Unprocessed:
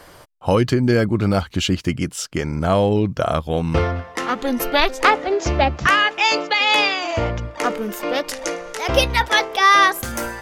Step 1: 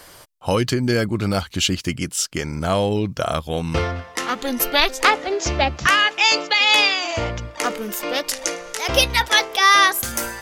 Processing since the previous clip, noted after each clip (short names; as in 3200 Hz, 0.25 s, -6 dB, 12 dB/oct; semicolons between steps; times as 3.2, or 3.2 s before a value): high shelf 2600 Hz +10.5 dB; gain -3.5 dB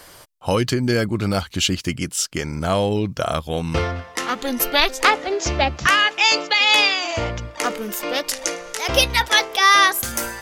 nothing audible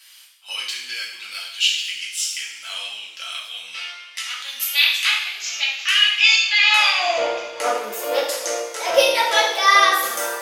high-pass sweep 2700 Hz -> 520 Hz, 6.43–7.15; two-slope reverb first 0.75 s, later 3.3 s, from -20 dB, DRR -5.5 dB; gain -8 dB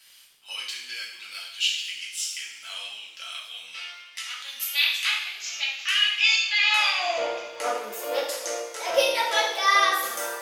crackle 270/s -45 dBFS; gain -6 dB